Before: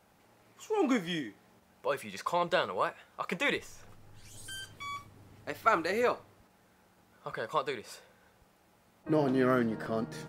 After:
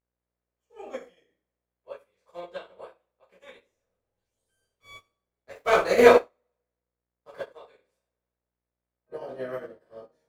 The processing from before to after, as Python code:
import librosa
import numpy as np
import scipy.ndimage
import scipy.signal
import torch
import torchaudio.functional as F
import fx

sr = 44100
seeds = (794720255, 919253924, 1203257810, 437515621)

y = fx.spec_clip(x, sr, under_db=12)
y = fx.leveller(y, sr, passes=3, at=(4.7, 7.41))
y = fx.peak_eq(y, sr, hz=520.0, db=14.5, octaves=0.97)
y = fx.rev_double_slope(y, sr, seeds[0], early_s=0.46, late_s=1.5, knee_db=-25, drr_db=-9.5)
y = fx.dmg_buzz(y, sr, base_hz=60.0, harmonics=37, level_db=-43.0, tilt_db=-5, odd_only=False)
y = fx.upward_expand(y, sr, threshold_db=-23.0, expansion=2.5)
y = y * librosa.db_to_amplitude(-10.0)